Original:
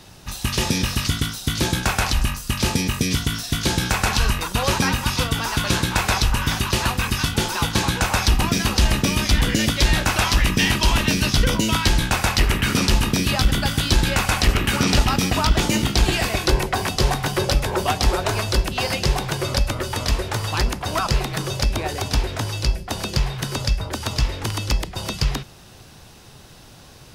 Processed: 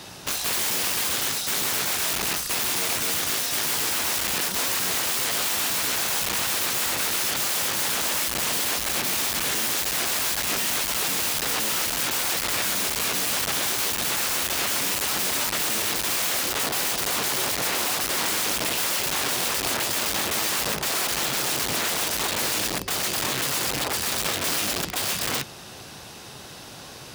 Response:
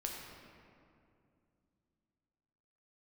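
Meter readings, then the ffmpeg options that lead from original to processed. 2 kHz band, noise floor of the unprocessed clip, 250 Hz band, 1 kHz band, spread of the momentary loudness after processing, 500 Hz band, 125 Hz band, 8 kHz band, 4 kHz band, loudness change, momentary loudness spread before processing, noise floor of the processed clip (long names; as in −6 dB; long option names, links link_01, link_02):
−3.0 dB, −45 dBFS, −12.0 dB, −5.0 dB, 2 LU, −6.0 dB, −19.5 dB, +3.5 dB, −2.0 dB, −2.0 dB, 6 LU, −41 dBFS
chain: -af "aeval=exprs='(tanh(10*val(0)+0.45)-tanh(0.45))/10':channel_layout=same,aeval=exprs='(mod(26.6*val(0)+1,2)-1)/26.6':channel_layout=same,highpass=frequency=260:poles=1,volume=8dB"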